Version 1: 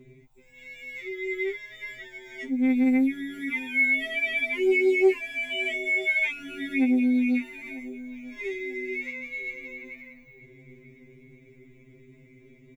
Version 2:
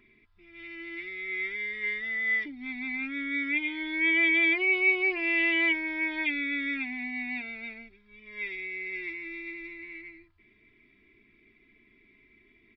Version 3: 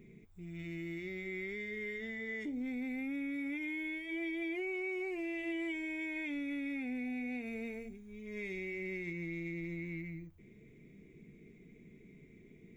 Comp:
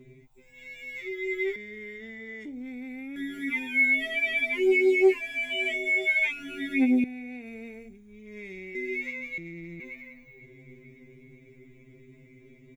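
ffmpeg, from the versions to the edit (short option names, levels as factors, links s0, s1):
-filter_complex "[2:a]asplit=3[s0][s1][s2];[0:a]asplit=4[s3][s4][s5][s6];[s3]atrim=end=1.562[s7];[s0]atrim=start=1.558:end=3.162[s8];[s4]atrim=start=3.158:end=7.042[s9];[s1]atrim=start=7.038:end=8.752[s10];[s5]atrim=start=8.748:end=9.382[s11];[s2]atrim=start=9.378:end=9.802[s12];[s6]atrim=start=9.798[s13];[s7][s8]acrossfade=d=0.004:c1=hsin:c2=hsin[s14];[s14][s9]acrossfade=d=0.004:c1=hsin:c2=hsin[s15];[s15][s10]acrossfade=d=0.004:c1=hsin:c2=hsin[s16];[s16][s11]acrossfade=d=0.004:c1=hsin:c2=hsin[s17];[s17][s12]acrossfade=d=0.004:c1=hsin:c2=hsin[s18];[s18][s13]acrossfade=d=0.004:c1=hsin:c2=hsin"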